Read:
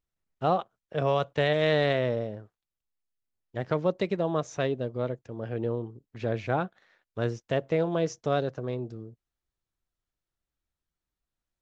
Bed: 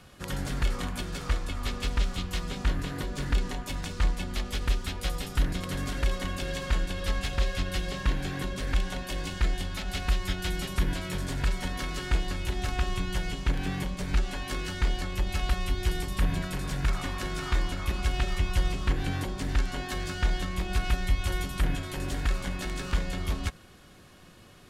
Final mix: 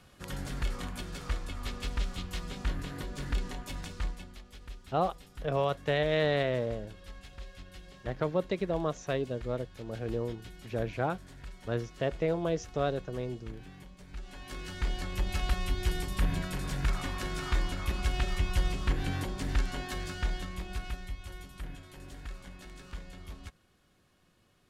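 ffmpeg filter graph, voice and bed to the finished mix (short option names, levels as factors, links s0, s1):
-filter_complex "[0:a]adelay=4500,volume=0.668[s0];[1:a]volume=3.35,afade=t=out:st=3.8:d=0.6:silence=0.223872,afade=t=in:st=14.14:d=1.09:silence=0.158489,afade=t=out:st=19.67:d=1.51:silence=0.237137[s1];[s0][s1]amix=inputs=2:normalize=0"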